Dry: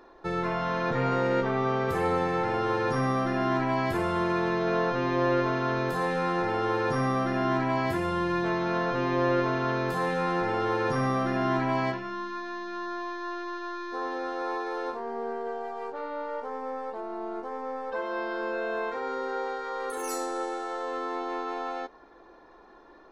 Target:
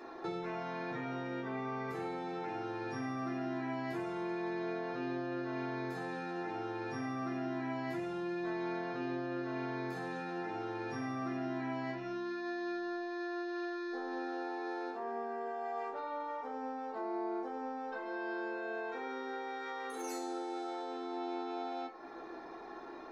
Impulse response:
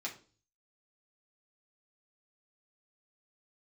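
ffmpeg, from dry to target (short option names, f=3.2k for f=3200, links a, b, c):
-filter_complex "[0:a]acompressor=threshold=-42dB:ratio=12[a];[1:a]atrim=start_sample=2205[b];[a][b]afir=irnorm=-1:irlink=0,volume=5.5dB"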